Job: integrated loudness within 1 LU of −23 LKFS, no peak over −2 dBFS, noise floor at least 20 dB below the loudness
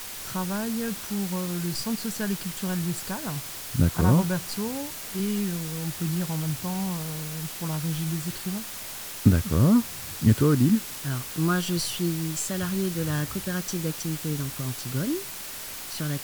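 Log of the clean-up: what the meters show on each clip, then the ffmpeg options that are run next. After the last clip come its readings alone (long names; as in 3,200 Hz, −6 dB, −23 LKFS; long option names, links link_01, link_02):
background noise floor −37 dBFS; target noise floor −47 dBFS; integrated loudness −27.0 LKFS; sample peak −5.0 dBFS; target loudness −23.0 LKFS
→ -af "afftdn=noise_reduction=10:noise_floor=-37"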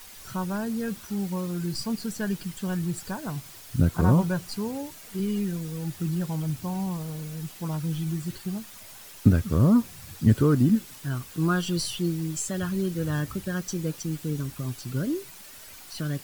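background noise floor −46 dBFS; target noise floor −48 dBFS
→ -af "afftdn=noise_reduction=6:noise_floor=-46"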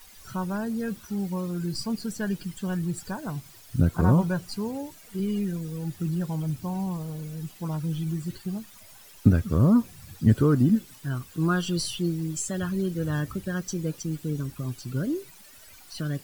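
background noise floor −50 dBFS; integrated loudness −28.0 LKFS; sample peak −5.0 dBFS; target loudness −23.0 LKFS
→ -af "volume=5dB,alimiter=limit=-2dB:level=0:latency=1"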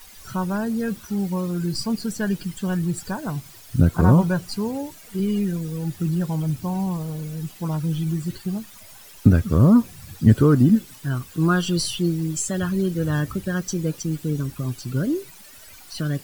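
integrated loudness −23.0 LKFS; sample peak −2.0 dBFS; background noise floor −45 dBFS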